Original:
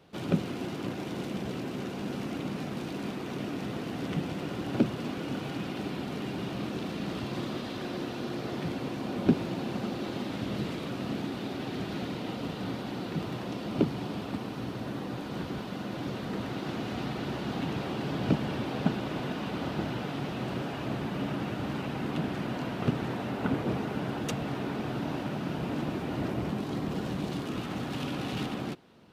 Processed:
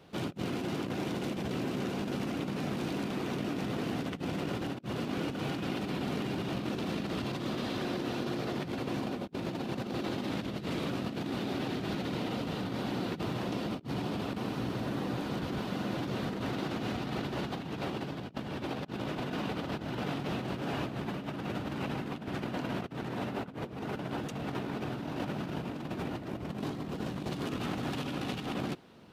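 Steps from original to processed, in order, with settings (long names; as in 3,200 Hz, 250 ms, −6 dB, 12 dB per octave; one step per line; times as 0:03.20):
compressor whose output falls as the input rises −35 dBFS, ratio −0.5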